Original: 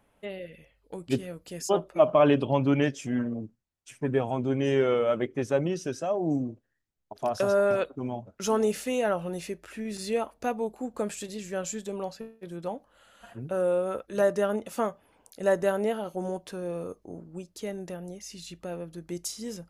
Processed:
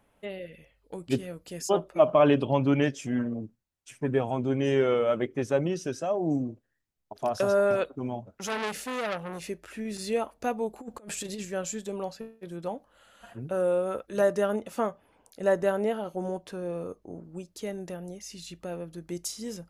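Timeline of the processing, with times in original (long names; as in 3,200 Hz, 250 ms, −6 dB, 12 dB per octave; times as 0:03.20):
0:08.31–0:09.47: saturating transformer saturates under 2,400 Hz
0:10.73–0:11.45: compressor whose output falls as the input rises −37 dBFS, ratio −0.5
0:14.61–0:17.24: high-shelf EQ 4,200 Hz −5 dB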